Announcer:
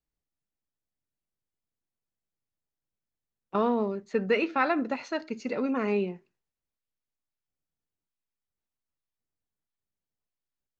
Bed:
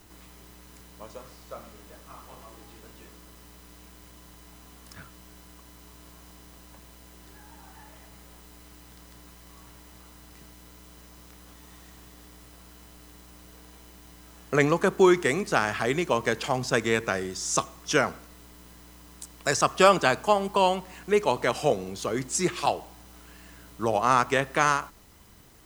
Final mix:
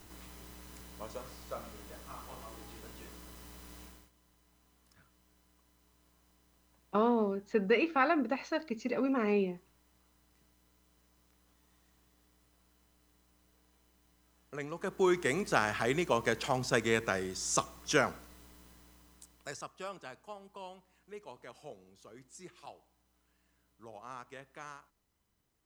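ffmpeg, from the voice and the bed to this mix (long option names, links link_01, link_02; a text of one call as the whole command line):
ffmpeg -i stem1.wav -i stem2.wav -filter_complex "[0:a]adelay=3400,volume=-2.5dB[link_01];[1:a]volume=13dB,afade=type=out:start_time=3.82:duration=0.28:silence=0.125893,afade=type=in:start_time=14.71:duration=0.73:silence=0.199526,afade=type=out:start_time=18.16:duration=1.56:silence=0.1[link_02];[link_01][link_02]amix=inputs=2:normalize=0" out.wav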